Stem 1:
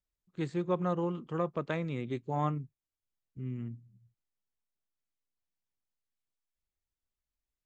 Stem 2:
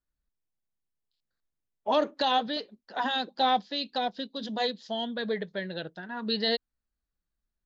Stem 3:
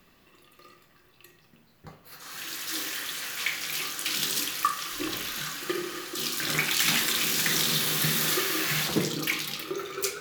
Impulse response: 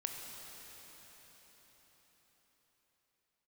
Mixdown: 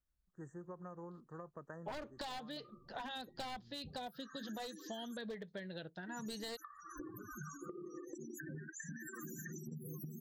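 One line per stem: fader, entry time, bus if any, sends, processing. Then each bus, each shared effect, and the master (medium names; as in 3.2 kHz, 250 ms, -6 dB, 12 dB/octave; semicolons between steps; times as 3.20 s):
-10.5 dB, 0.00 s, bus A, no send, bass shelf 460 Hz -9 dB
-4.5 dB, 0.00 s, no bus, no send, one-sided wavefolder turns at -23 dBFS
-1.0 dB, 2.00 s, muted 5.17–6.07 s, bus A, no send, peaking EQ 2.8 kHz -14.5 dB 0.25 oct; LFO notch saw down 0.42 Hz 730–3100 Hz; loudest bins only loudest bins 16
bus A: 0.0 dB, brick-wall FIR band-stop 1.9–5.7 kHz; compression 8:1, threshold -44 dBFS, peak gain reduction 21.5 dB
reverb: none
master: peaking EQ 67 Hz +8.5 dB 2.2 oct; compression 6:1, threshold -43 dBFS, peak gain reduction 15.5 dB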